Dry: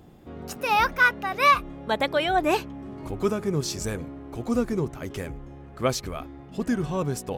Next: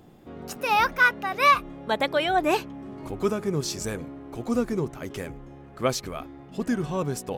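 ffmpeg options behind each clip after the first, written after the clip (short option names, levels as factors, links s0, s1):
-af "equalizer=f=60:w=0.92:g=-7.5"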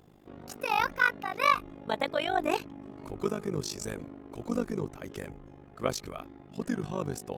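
-af "tremolo=f=50:d=0.919,volume=0.794"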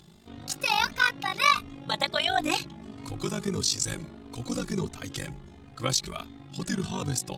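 -filter_complex "[0:a]equalizer=f=125:t=o:w=1:g=4,equalizer=f=500:t=o:w=1:g=-6,equalizer=f=4000:t=o:w=1:g=11,equalizer=f=8000:t=o:w=1:g=9,asplit=2[s0][s1];[s1]alimiter=limit=0.119:level=0:latency=1:release=113,volume=1.06[s2];[s0][s2]amix=inputs=2:normalize=0,asplit=2[s3][s4];[s4]adelay=3.1,afreqshift=1.5[s5];[s3][s5]amix=inputs=2:normalize=1"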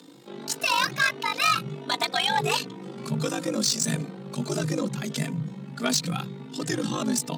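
-af "asubboost=boost=8:cutoff=65,asoftclip=type=tanh:threshold=0.0891,afreqshift=120,volume=1.68"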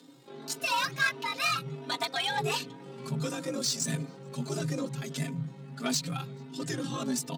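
-filter_complex "[0:a]aecho=1:1:7.4:0.86,asplit=2[s0][s1];[s1]adelay=431.5,volume=0.0355,highshelf=f=4000:g=-9.71[s2];[s0][s2]amix=inputs=2:normalize=0,volume=0.398"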